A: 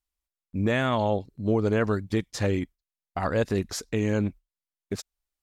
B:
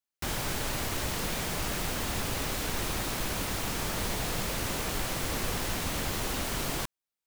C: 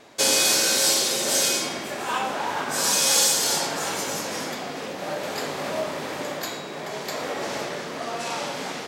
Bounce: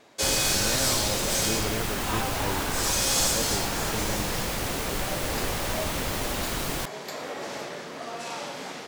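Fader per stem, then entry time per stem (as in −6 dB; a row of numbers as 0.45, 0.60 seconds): −9.5, +2.0, −5.5 decibels; 0.00, 0.00, 0.00 seconds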